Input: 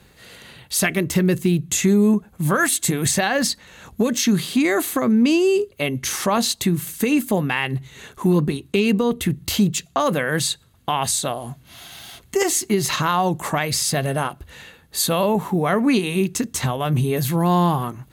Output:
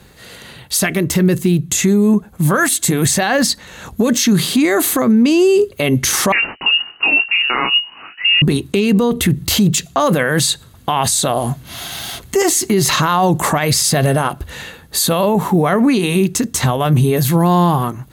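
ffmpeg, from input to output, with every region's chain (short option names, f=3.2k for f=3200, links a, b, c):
-filter_complex "[0:a]asettb=1/sr,asplit=3[a][b][c];[a]atrim=end=6.324[d];[b]atrim=start=6.32:end=8.42,asetpts=PTS-STARTPTS,afade=t=in:d=0.004:c=qsin,afade=t=out:st=2.096:d=0.004:c=qsin,flanger=delay=19.5:depth=5.1:speed=1.2,adynamicsmooth=sensitivity=4.5:basefreq=1.5k,lowpass=f=2.6k:t=q:w=0.5098,lowpass=f=2.6k:t=q:w=0.6013,lowpass=f=2.6k:t=q:w=0.9,lowpass=f=2.6k:t=q:w=2.563,afreqshift=-3000[e];[c]atrim=start=8.416[f];[d][e]acrossfade=d=0.004:c1=hsin:c2=qsin[g];[g][f]acrossfade=d=0.004:c1=qsin:c2=hsin,equalizer=f=2.5k:t=o:w=0.77:g=-2.5,dynaudnorm=f=820:g=11:m=11.5dB,alimiter=level_in=12dB:limit=-1dB:release=50:level=0:latency=1,volume=-5dB"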